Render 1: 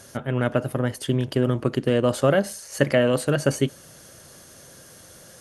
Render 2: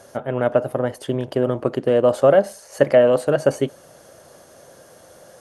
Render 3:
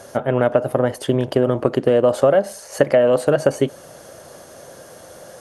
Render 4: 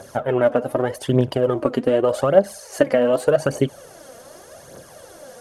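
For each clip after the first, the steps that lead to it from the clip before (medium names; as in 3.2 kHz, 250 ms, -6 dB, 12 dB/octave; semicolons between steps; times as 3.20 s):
peaking EQ 650 Hz +13.5 dB 1.9 oct; trim -5.5 dB
compression 4:1, threshold -18 dBFS, peak gain reduction 8.5 dB; trim +6 dB
phaser 0.84 Hz, delay 4.4 ms, feedback 56%; trim -3 dB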